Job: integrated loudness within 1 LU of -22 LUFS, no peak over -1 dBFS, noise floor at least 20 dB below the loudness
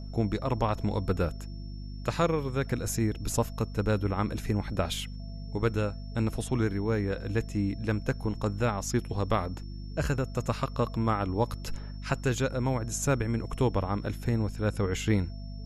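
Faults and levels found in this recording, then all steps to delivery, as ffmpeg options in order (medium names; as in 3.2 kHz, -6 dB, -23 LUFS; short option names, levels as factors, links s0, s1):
hum 50 Hz; highest harmonic 250 Hz; hum level -37 dBFS; steady tone 5.4 kHz; tone level -55 dBFS; loudness -30.5 LUFS; peak level -11.5 dBFS; loudness target -22.0 LUFS
-> -af "bandreject=f=50:t=h:w=4,bandreject=f=100:t=h:w=4,bandreject=f=150:t=h:w=4,bandreject=f=200:t=h:w=4,bandreject=f=250:t=h:w=4"
-af "bandreject=f=5400:w=30"
-af "volume=2.66"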